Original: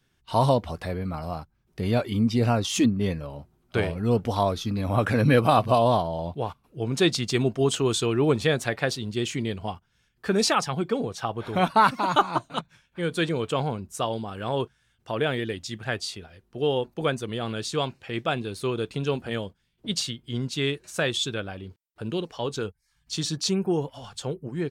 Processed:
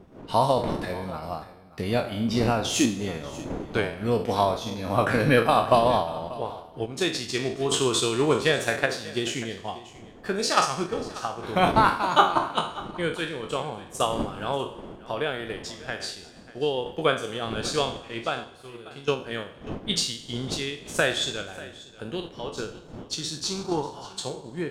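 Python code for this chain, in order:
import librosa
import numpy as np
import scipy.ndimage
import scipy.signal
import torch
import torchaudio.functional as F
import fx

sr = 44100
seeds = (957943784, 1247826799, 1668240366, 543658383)

y = fx.spec_trails(x, sr, decay_s=0.58)
y = fx.dmg_wind(y, sr, seeds[0], corner_hz=300.0, level_db=-35.0)
y = fx.comb_fb(y, sr, f0_hz=120.0, decay_s=0.46, harmonics='all', damping=0.0, mix_pct=80, at=(18.44, 19.08))
y = fx.band_shelf(y, sr, hz=1100.0, db=8.5, octaves=1.0, at=(23.43, 24.07))
y = fx.tremolo_random(y, sr, seeds[1], hz=3.5, depth_pct=55)
y = fx.low_shelf(y, sr, hz=220.0, db=-7.5)
y = fx.rev_schroeder(y, sr, rt60_s=1.5, comb_ms=31, drr_db=14.0)
y = fx.transient(y, sr, attack_db=4, sustain_db=-4)
y = y + 10.0 ** (-18.5 / 20.0) * np.pad(y, (int(589 * sr / 1000.0), 0))[:len(y)]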